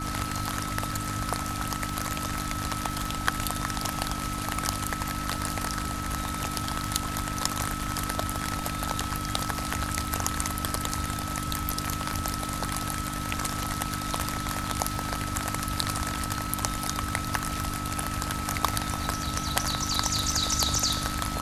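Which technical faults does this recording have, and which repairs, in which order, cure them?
surface crackle 31 per second −36 dBFS
mains hum 50 Hz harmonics 6 −36 dBFS
whistle 1,300 Hz −35 dBFS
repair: click removal
hum removal 50 Hz, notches 6
notch filter 1,300 Hz, Q 30

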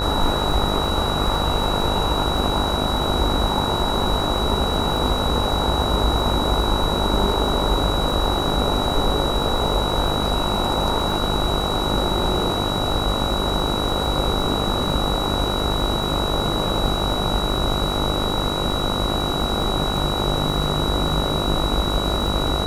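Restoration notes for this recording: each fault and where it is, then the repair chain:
mains buzz 50 Hz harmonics 29 −26 dBFS
surface crackle 28 per second −27 dBFS
whistle 3,900 Hz −26 dBFS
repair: click removal
notch filter 3,900 Hz, Q 30
hum removal 50 Hz, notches 29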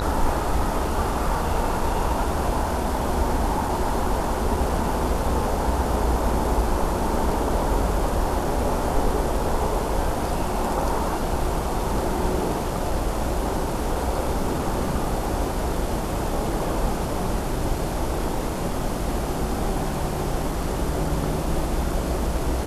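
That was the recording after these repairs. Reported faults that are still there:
none of them is left

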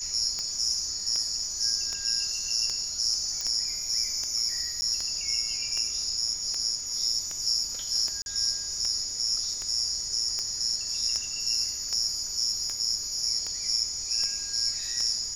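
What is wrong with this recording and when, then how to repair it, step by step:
scratch tick 78 rpm −19 dBFS
whistle 6,800 Hz −35 dBFS
0:03.41: click −17 dBFS
0:04.81–0:04.82: drop-out 10 ms
0:08.22–0:08.26: drop-out 41 ms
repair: click removal
notch filter 6,800 Hz, Q 30
repair the gap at 0:04.81, 10 ms
repair the gap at 0:08.22, 41 ms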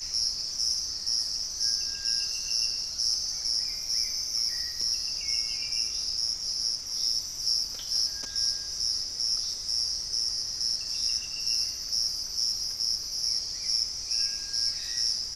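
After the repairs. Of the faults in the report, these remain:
none of them is left

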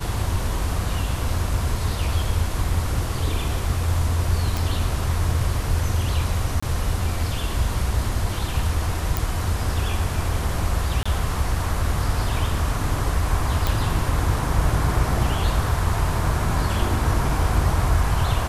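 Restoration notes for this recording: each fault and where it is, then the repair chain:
0:04.57: click
0:06.60–0:06.62: drop-out 25 ms
0:09.17: click
0:11.03–0:11.05: drop-out 25 ms
0:13.67: click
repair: click removal
repair the gap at 0:06.60, 25 ms
repair the gap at 0:11.03, 25 ms

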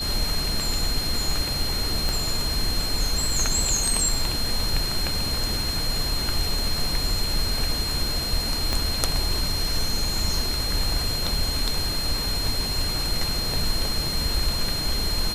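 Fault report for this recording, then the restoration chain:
whistle 4,200 Hz −27 dBFS
0:02.09: click
0:08.73: click −9 dBFS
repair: click removal
notch filter 4,200 Hz, Q 30

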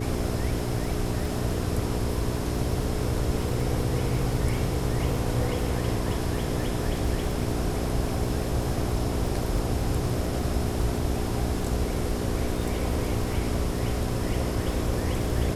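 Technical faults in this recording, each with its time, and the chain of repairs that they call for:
surface crackle 26 per second −31 dBFS
mains hum 60 Hz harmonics 7 −31 dBFS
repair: click removal
hum removal 60 Hz, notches 7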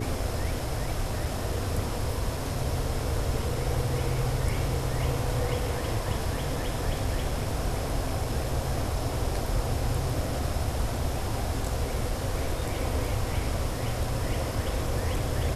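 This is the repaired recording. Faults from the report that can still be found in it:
none of them is left

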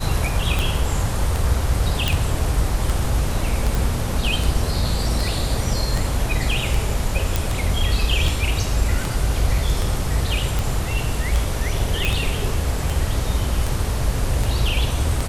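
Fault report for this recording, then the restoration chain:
scratch tick 78 rpm
0:02.08: click
0:03.75: click
0:07.36: click
0:12.05: click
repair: click removal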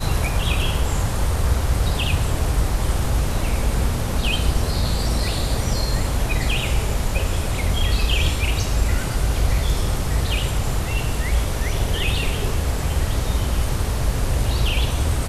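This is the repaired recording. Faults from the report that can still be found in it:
none of them is left

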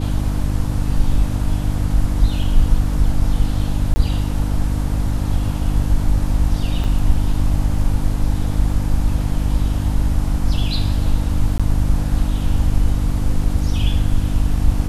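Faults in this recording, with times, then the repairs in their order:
mains hum 50 Hz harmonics 6 −21 dBFS
0:03.94–0:03.96: drop-out 20 ms
0:06.84: drop-out 4.1 ms
0:11.58–0:11.60: drop-out 16 ms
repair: hum removal 50 Hz, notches 6
repair the gap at 0:03.94, 20 ms
repair the gap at 0:06.84, 4.1 ms
repair the gap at 0:11.58, 16 ms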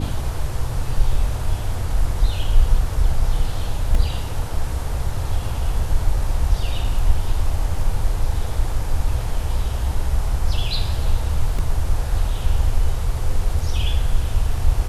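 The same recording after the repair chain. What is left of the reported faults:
none of them is left

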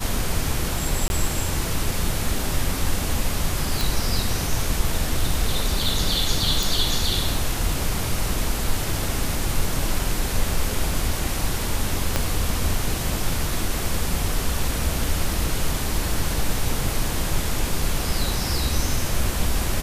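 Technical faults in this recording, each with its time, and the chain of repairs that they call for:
0:01.08–0:01.10: drop-out 21 ms
0:03.81: click
0:06.63: click
0:12.16: click −5 dBFS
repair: click removal
repair the gap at 0:01.08, 21 ms

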